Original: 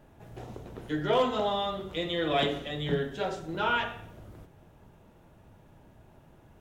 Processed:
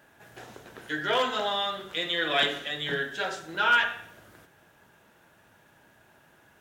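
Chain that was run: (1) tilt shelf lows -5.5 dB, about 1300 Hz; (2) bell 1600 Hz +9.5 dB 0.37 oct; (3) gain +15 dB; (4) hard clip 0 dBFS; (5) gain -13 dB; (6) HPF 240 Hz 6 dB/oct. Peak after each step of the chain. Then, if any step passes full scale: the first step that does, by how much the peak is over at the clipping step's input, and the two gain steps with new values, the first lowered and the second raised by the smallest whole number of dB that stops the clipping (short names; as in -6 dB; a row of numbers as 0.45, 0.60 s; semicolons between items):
-13.5, -12.0, +3.0, 0.0, -13.0, -12.0 dBFS; step 3, 3.0 dB; step 3 +12 dB, step 5 -10 dB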